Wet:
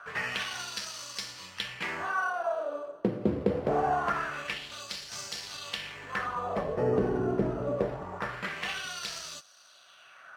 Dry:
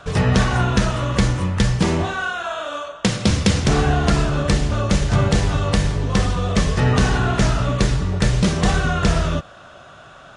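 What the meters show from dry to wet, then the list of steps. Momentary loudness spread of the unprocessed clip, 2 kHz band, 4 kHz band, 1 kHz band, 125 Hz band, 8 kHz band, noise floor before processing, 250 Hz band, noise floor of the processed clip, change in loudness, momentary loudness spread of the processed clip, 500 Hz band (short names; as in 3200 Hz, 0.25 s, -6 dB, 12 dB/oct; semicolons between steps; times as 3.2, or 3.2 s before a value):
5 LU, -9.5 dB, -10.5 dB, -8.5 dB, -22.5 dB, -13.0 dB, -43 dBFS, -14.5 dB, -56 dBFS, -13.0 dB, 9 LU, -7.5 dB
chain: careless resampling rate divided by 6×, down filtered, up hold; LFO band-pass sine 0.24 Hz 360–5100 Hz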